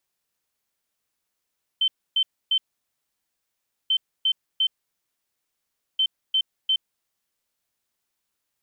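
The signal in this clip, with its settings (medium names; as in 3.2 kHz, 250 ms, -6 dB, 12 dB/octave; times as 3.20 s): beep pattern sine 3.09 kHz, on 0.07 s, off 0.28 s, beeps 3, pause 1.32 s, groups 3, -17.5 dBFS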